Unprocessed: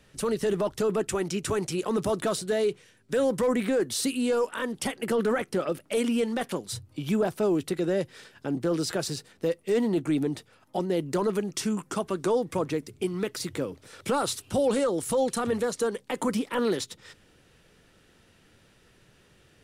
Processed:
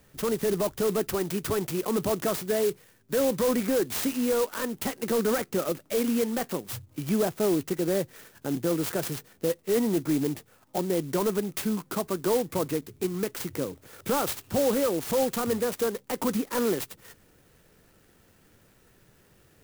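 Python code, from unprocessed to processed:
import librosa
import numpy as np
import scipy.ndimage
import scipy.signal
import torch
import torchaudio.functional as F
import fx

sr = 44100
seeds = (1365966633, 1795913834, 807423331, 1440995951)

y = fx.clock_jitter(x, sr, seeds[0], jitter_ms=0.075)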